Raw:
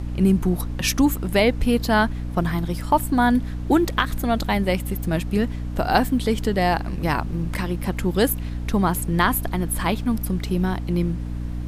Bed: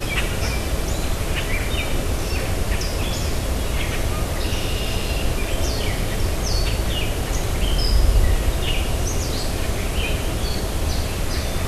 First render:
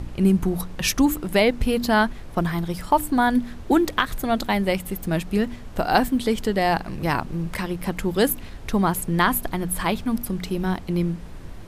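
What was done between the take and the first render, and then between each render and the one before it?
de-hum 60 Hz, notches 5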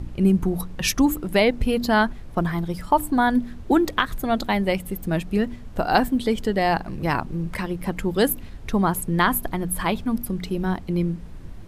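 noise reduction 6 dB, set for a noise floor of -37 dBFS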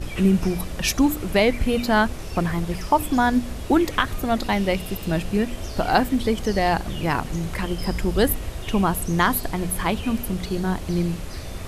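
add bed -11 dB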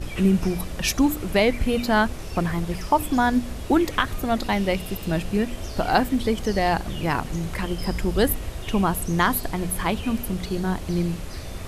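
trim -1 dB

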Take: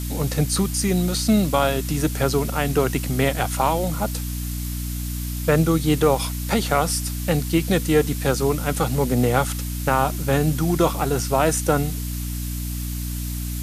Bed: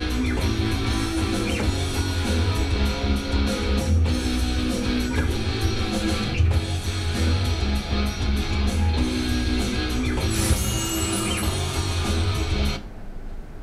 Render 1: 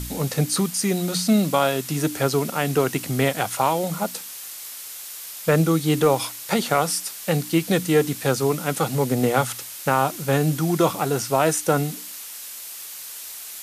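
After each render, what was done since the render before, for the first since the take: de-hum 60 Hz, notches 5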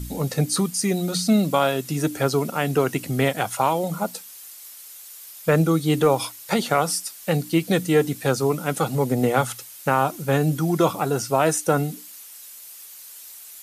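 noise reduction 9 dB, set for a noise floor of -37 dBFS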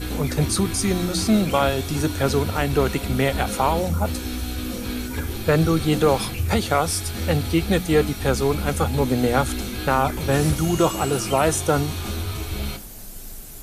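add bed -5 dB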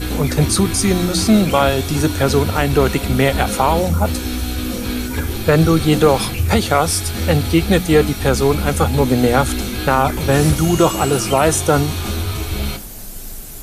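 trim +6 dB; peak limiter -2 dBFS, peak gain reduction 2 dB

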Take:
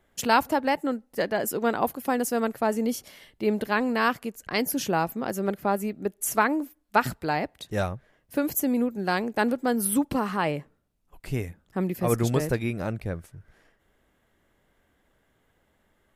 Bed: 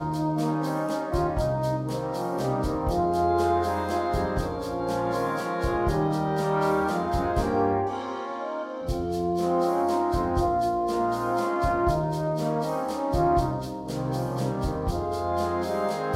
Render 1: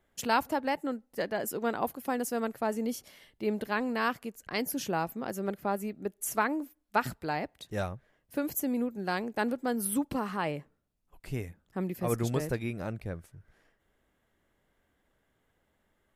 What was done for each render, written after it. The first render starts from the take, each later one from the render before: trim -6 dB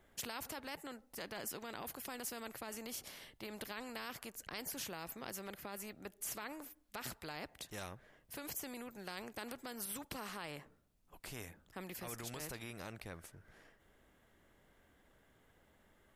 peak limiter -25 dBFS, peak gain reduction 12 dB; spectrum-flattening compressor 2:1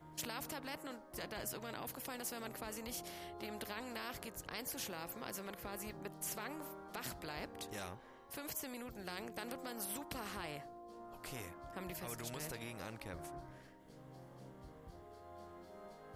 add bed -28 dB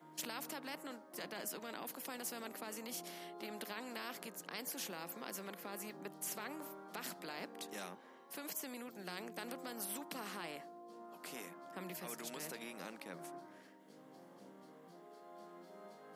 Chebyshev high-pass 170 Hz, order 5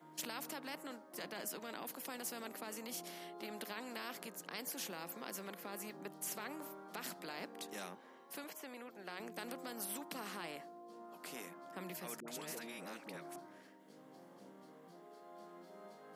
8.44–9.20 s: tone controls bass -10 dB, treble -10 dB; 12.20–13.36 s: phase dispersion highs, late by 79 ms, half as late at 670 Hz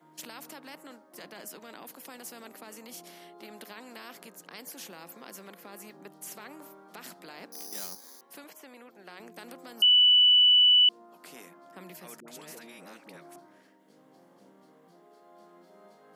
7.52–8.21 s: careless resampling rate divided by 8×, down filtered, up zero stuff; 9.82–10.89 s: bleep 2.97 kHz -16 dBFS

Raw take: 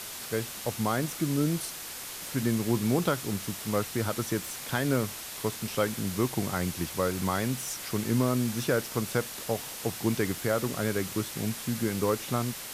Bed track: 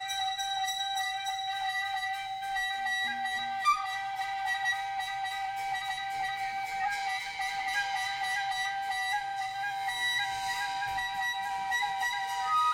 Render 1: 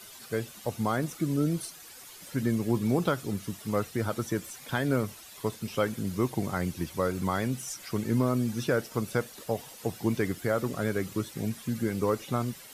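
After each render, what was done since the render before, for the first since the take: noise reduction 12 dB, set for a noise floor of -40 dBFS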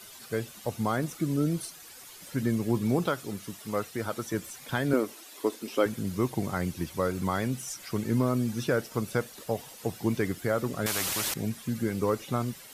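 3.06–4.34 s: bass shelf 210 Hz -8.5 dB; 4.93–5.86 s: resonant low shelf 200 Hz -14 dB, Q 3; 10.86–11.34 s: spectrum-flattening compressor 4:1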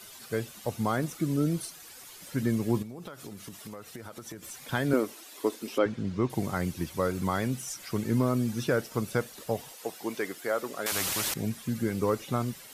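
2.82–4.43 s: compression 20:1, threshold -37 dBFS; 5.78–6.30 s: distance through air 140 m; 9.72–10.92 s: high-pass 400 Hz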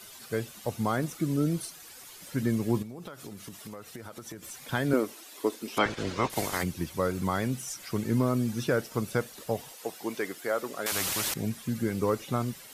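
5.76–6.62 s: spectral peaks clipped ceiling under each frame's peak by 22 dB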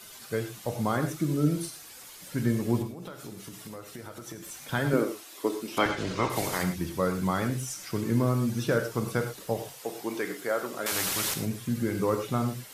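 gated-style reverb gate 140 ms flat, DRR 6 dB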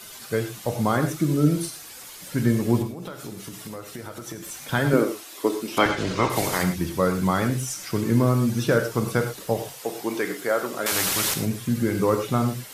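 trim +5.5 dB

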